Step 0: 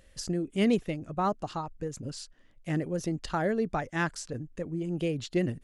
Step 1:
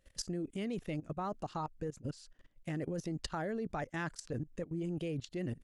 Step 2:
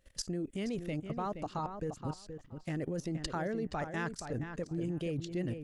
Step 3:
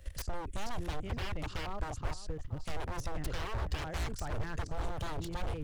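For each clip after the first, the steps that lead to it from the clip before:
output level in coarse steps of 19 dB; level +1.5 dB
feedback echo with a low-pass in the loop 473 ms, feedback 15%, low-pass 2,800 Hz, level −8 dB; level +1.5 dB
wave folding −38 dBFS; low shelf with overshoot 120 Hz +14 dB, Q 1.5; multiband upward and downward compressor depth 40%; level +3 dB

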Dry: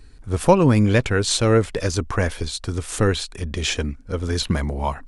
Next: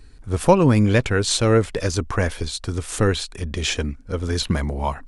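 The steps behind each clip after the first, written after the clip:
no processing that can be heard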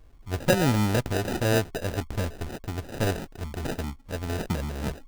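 sample-rate reduction 1,100 Hz, jitter 0%
level −7 dB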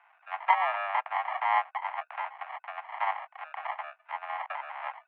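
single-sideband voice off tune +390 Hz 350–2,200 Hz
one half of a high-frequency compander encoder only

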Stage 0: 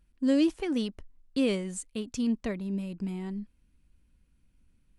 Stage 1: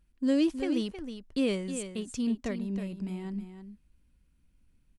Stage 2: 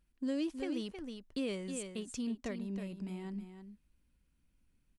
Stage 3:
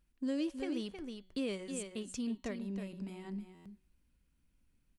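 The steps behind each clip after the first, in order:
single-tap delay 317 ms −9.5 dB; level −1.5 dB
low-shelf EQ 190 Hz −5 dB; downward compressor 2 to 1, threshold −33 dBFS, peak gain reduction 6 dB; level −3 dB
hum removal 186.4 Hz, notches 24; buffer that repeats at 0:03.54, samples 512, times 9

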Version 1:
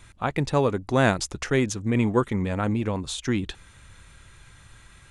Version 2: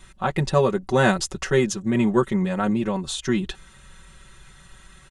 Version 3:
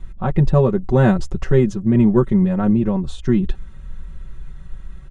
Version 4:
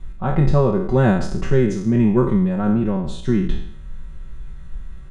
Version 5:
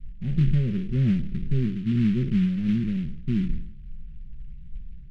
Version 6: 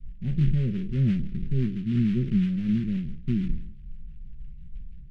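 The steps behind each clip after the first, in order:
notch filter 2,300 Hz, Q 11; comb filter 5.3 ms, depth 92%
spectral tilt −4 dB per octave; level −2 dB
peak hold with a decay on every bin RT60 0.67 s; level −2.5 dB
transistor ladder low-pass 270 Hz, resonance 25%; short delay modulated by noise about 2,200 Hz, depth 0.042 ms
rotating-speaker cabinet horn 6 Hz

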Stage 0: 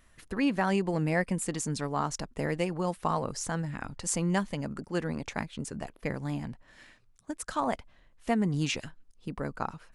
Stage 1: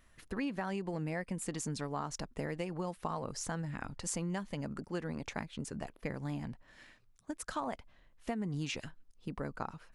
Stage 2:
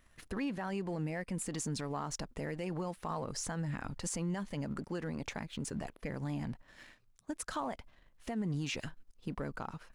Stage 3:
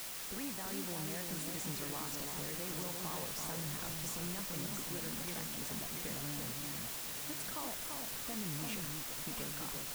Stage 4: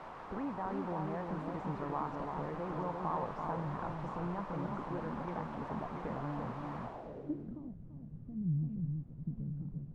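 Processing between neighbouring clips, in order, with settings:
parametric band 8,600 Hz −2.5 dB 0.77 octaves; downward compressor, threshold −30 dBFS, peak gain reduction 9 dB; level −3 dB
leveller curve on the samples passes 1; brickwall limiter −28.5 dBFS, peak gain reduction 8.5 dB
bit-depth reduction 6 bits, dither triangular; on a send: delay that swaps between a low-pass and a high-pass 340 ms, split 1,200 Hz, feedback 70%, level −3.5 dB; on the sum: level −8 dB
low-pass filter sweep 1,000 Hz → 160 Hz, 0:06.82–0:07.75; level +4 dB

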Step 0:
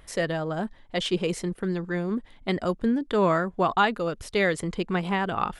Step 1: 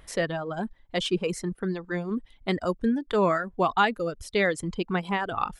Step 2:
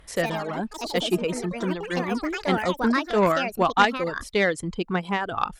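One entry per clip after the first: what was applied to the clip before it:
reverb reduction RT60 1.2 s
delay with pitch and tempo change per echo 106 ms, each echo +5 semitones, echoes 3, each echo −6 dB; harmonic generator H 3 −16 dB, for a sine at −8.5 dBFS; level +6.5 dB

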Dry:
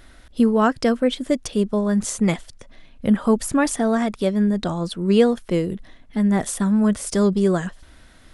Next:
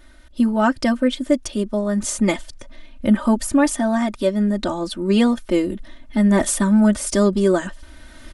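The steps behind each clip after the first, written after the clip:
comb filter 3.3 ms, depth 96%
automatic gain control gain up to 12 dB
level −5 dB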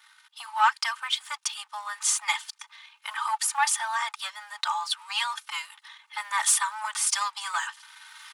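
leveller curve on the samples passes 1
Chebyshev high-pass with heavy ripple 830 Hz, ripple 3 dB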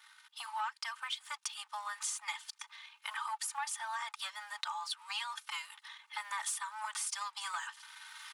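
downward compressor 4 to 1, threshold −34 dBFS, peak gain reduction 15.5 dB
level −3 dB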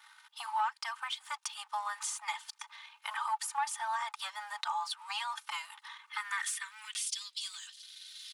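high-pass filter sweep 720 Hz → 3,900 Hz, 0:05.66–0:07.25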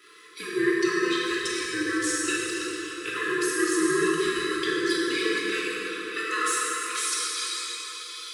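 neighbouring bands swapped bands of 500 Hz
dense smooth reverb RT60 4.4 s, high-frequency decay 0.6×, DRR −7 dB
level +3.5 dB

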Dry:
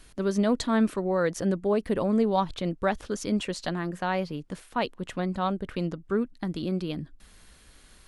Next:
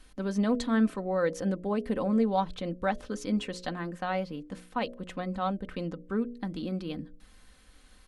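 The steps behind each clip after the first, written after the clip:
high-shelf EQ 5,100 Hz −5.5 dB
comb filter 3.9 ms, depth 46%
hum removal 60 Hz, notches 11
level −3.5 dB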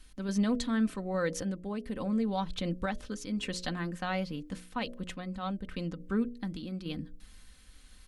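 parametric band 620 Hz −9 dB 2.9 octaves
in parallel at −2 dB: brickwall limiter −28 dBFS, peak gain reduction 8 dB
on the sum: sample-and-hold tremolo
level +1 dB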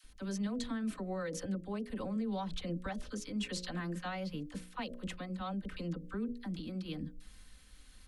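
brickwall limiter −27.5 dBFS, peak gain reduction 8 dB
all-pass dispersion lows, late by 41 ms, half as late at 650 Hz
level −2 dB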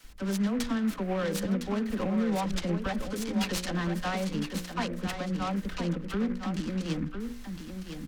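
single-tap delay 1,009 ms −7.5 dB
short delay modulated by noise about 1,400 Hz, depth 0.047 ms
level +8 dB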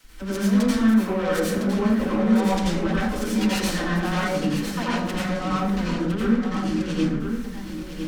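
dense smooth reverb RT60 0.73 s, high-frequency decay 0.55×, pre-delay 75 ms, DRR −7 dB

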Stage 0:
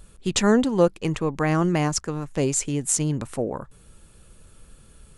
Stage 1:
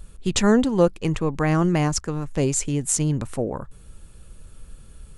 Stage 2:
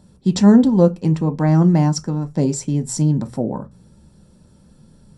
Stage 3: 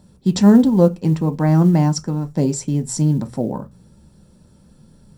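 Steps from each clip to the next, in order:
low-shelf EQ 100 Hz +9 dB
convolution reverb RT60 0.20 s, pre-delay 3 ms, DRR 6 dB; level −9 dB
log-companded quantiser 8 bits

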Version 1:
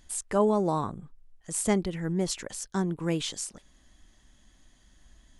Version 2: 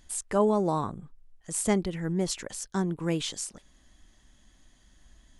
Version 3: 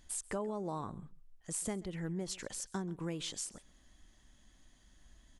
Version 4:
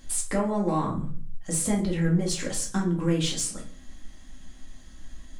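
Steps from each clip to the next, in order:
no processing that can be heard
downward compressor 6 to 1, threshold −31 dBFS, peak gain reduction 12 dB; single-tap delay 134 ms −21.5 dB; level −4 dB
soft clipping −29.5 dBFS, distortion −20 dB; convolution reverb RT60 0.40 s, pre-delay 4 ms, DRR −1.5 dB; level +9 dB

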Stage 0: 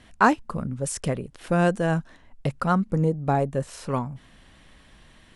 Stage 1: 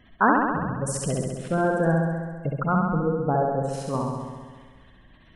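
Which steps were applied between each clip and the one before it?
gate on every frequency bin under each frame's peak −20 dB strong
flutter between parallel walls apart 11.4 metres, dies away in 1.5 s
level −2 dB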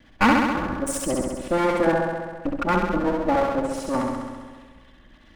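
lower of the sound and its delayed copy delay 3.5 ms
level +3 dB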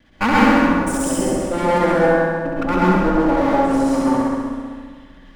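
dense smooth reverb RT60 1.4 s, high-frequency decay 0.55×, pre-delay 100 ms, DRR −6 dB
level −1.5 dB

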